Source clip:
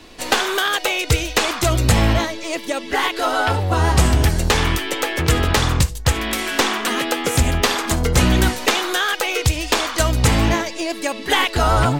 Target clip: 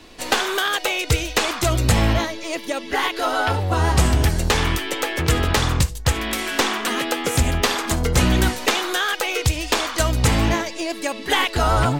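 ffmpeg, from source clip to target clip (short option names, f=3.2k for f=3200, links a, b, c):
-filter_complex "[0:a]asettb=1/sr,asplit=3[a][b][c];[a]atrim=end=2.114[d];[b]atrim=start=2.11:end=3.58,asetpts=PTS-STARTPTS,afade=t=in:d=0.004:c=qsin,afade=t=out:st=1.466:d=0.004:c=qsin,bandreject=f=7.9k:w=10[e];[c]atrim=start=3.576[f];[d][e]acrossfade=d=0.004:c1=hsin:c2=qsin[g];[g][f]acrossfade=d=0.004:c1=qsin:c2=hsin,volume=-2dB"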